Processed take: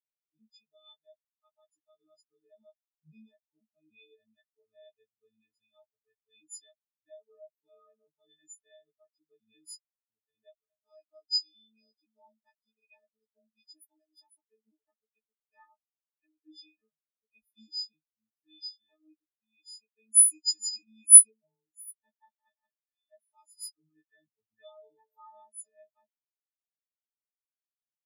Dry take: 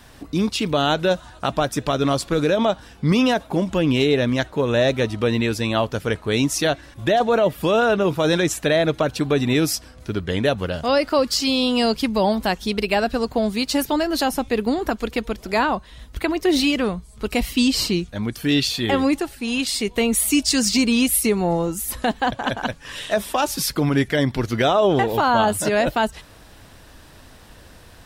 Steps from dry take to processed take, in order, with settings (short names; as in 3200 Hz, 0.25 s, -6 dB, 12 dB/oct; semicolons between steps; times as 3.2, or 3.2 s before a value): frequency quantiser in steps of 6 st; spectral expander 4:1; gain -6 dB